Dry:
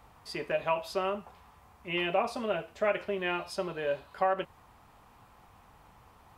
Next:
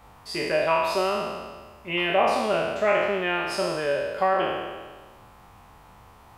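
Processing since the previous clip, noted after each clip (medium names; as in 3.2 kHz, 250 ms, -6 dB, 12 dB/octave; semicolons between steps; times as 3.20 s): spectral sustain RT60 1.48 s; trim +4 dB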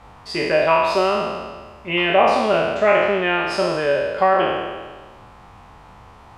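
distance through air 62 m; trim +6.5 dB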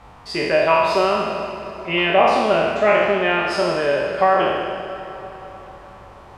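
plate-style reverb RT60 4.8 s, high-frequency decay 0.75×, DRR 9 dB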